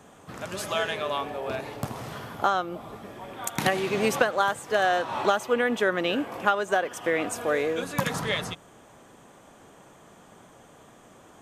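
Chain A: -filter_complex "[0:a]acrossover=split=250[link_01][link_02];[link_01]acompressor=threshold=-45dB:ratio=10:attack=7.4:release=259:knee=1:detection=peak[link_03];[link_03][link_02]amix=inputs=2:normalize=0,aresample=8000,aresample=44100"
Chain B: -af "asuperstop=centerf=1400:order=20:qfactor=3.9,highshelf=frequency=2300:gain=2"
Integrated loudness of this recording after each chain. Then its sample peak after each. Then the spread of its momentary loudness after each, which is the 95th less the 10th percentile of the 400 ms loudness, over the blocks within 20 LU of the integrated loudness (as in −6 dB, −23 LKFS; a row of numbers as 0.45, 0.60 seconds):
−27.5, −27.0 LKFS; −7.5, −8.5 dBFS; 15, 13 LU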